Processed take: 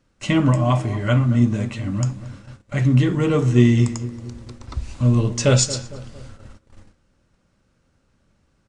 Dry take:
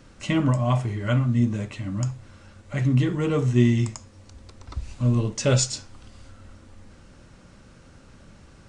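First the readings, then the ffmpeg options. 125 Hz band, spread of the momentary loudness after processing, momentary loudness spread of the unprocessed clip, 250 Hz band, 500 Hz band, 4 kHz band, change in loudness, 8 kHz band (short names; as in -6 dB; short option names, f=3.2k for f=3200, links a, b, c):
+4.5 dB, 19 LU, 14 LU, +4.5 dB, +4.5 dB, +4.5 dB, +4.5 dB, +4.5 dB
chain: -filter_complex "[0:a]asplit=2[a][b];[b]adelay=228,lowpass=f=1.5k:p=1,volume=-14dB,asplit=2[c][d];[d]adelay=228,lowpass=f=1.5k:p=1,volume=0.5,asplit=2[e][f];[f]adelay=228,lowpass=f=1.5k:p=1,volume=0.5,asplit=2[g][h];[h]adelay=228,lowpass=f=1.5k:p=1,volume=0.5,asplit=2[i][j];[j]adelay=228,lowpass=f=1.5k:p=1,volume=0.5[k];[a][c][e][g][i][k]amix=inputs=6:normalize=0,agate=range=-19dB:threshold=-43dB:ratio=16:detection=peak,volume=4.5dB"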